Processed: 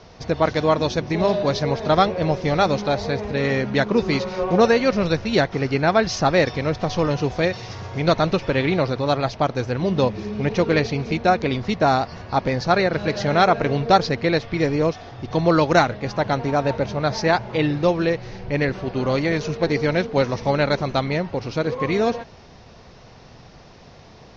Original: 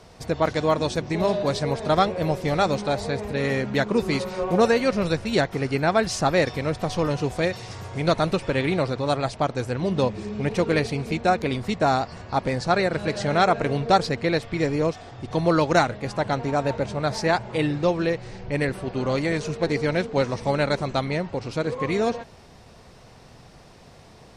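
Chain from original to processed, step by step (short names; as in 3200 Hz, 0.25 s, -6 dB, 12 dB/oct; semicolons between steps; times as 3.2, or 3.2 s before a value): steep low-pass 6400 Hz 72 dB/oct; gain +3 dB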